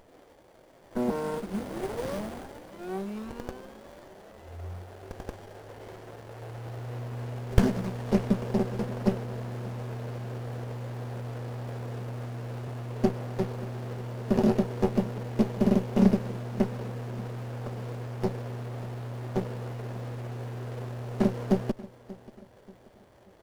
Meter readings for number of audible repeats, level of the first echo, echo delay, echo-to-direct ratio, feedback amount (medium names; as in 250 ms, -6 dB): 3, -19.0 dB, 584 ms, -18.5 dB, 40%